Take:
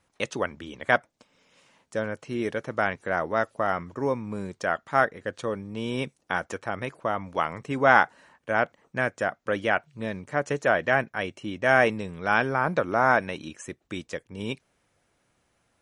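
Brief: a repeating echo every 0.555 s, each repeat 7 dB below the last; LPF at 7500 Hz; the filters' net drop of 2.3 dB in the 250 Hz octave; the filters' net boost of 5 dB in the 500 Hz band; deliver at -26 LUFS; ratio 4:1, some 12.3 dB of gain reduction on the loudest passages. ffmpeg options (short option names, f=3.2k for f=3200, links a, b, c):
-af "lowpass=7.5k,equalizer=f=250:t=o:g=-5.5,equalizer=f=500:t=o:g=7.5,acompressor=threshold=-26dB:ratio=4,aecho=1:1:555|1110|1665|2220|2775:0.447|0.201|0.0905|0.0407|0.0183,volume=5.5dB"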